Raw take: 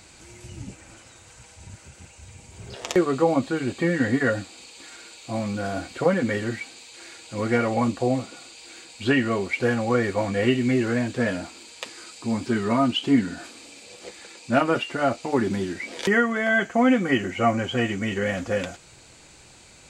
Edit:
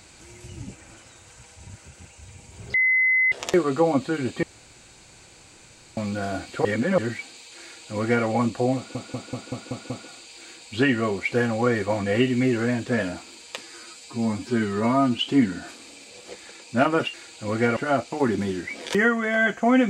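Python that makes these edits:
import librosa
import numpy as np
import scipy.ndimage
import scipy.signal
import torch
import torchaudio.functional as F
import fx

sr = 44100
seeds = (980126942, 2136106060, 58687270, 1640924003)

y = fx.edit(x, sr, fx.insert_tone(at_s=2.74, length_s=0.58, hz=2040.0, db=-16.5),
    fx.room_tone_fill(start_s=3.85, length_s=1.54),
    fx.reverse_span(start_s=6.07, length_s=0.33),
    fx.duplicate(start_s=7.04, length_s=0.63, to_s=14.89),
    fx.stutter(start_s=8.18, slice_s=0.19, count=7),
    fx.stretch_span(start_s=11.89, length_s=1.05, factor=1.5), tone=tone)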